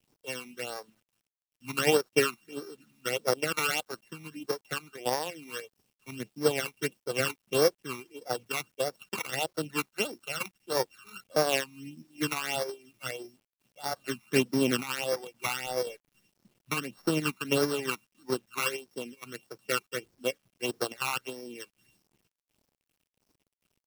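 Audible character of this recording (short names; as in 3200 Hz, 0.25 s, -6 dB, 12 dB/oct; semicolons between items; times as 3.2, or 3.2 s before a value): a buzz of ramps at a fixed pitch in blocks of 16 samples; tremolo triangle 2.8 Hz, depth 50%; phasing stages 12, 1.6 Hz, lowest notch 520–2800 Hz; a quantiser's noise floor 12-bit, dither none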